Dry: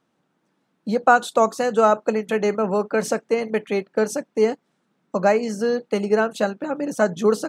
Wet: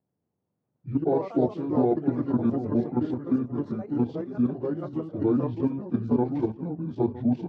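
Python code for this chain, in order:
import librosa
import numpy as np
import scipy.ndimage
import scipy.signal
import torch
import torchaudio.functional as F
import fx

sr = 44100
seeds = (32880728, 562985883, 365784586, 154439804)

p1 = fx.pitch_bins(x, sr, semitones=-10.0)
p2 = fx.level_steps(p1, sr, step_db=10)
p3 = fx.bandpass_q(p2, sr, hz=240.0, q=0.55)
p4 = fx.echo_pitch(p3, sr, ms=223, semitones=3, count=3, db_per_echo=-6.0)
y = p4 + fx.echo_single(p4, sr, ms=961, db=-16.0, dry=0)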